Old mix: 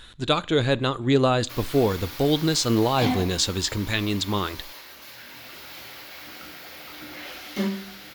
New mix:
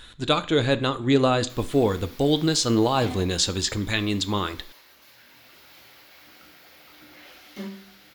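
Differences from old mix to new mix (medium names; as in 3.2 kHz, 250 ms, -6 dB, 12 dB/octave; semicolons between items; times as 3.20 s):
speech: send +7.0 dB; background -9.5 dB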